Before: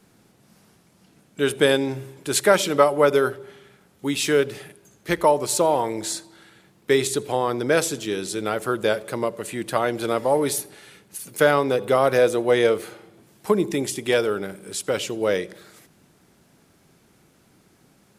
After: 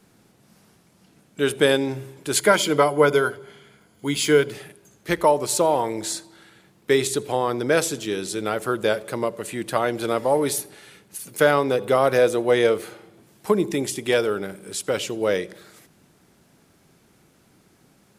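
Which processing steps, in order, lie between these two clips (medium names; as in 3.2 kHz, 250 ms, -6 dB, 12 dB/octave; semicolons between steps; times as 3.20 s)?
2.37–4.52 s: rippled EQ curve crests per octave 1.8, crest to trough 9 dB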